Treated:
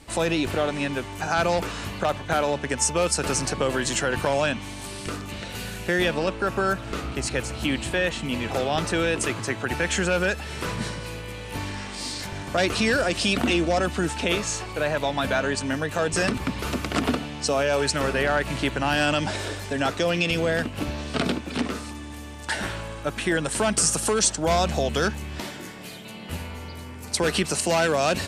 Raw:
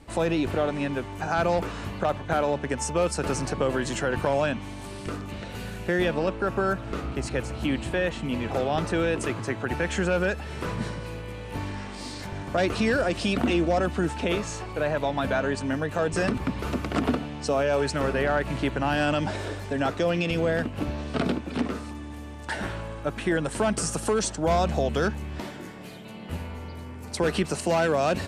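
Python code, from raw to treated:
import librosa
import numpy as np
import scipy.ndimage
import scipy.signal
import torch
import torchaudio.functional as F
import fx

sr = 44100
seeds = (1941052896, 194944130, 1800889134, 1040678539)

y = fx.high_shelf(x, sr, hz=2100.0, db=10.0)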